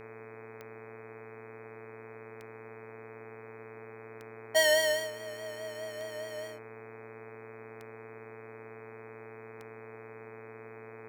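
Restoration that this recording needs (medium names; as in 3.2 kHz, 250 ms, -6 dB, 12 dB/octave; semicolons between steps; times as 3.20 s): de-click; de-hum 114.5 Hz, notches 22; band-stop 440 Hz, Q 30; noise print and reduce 30 dB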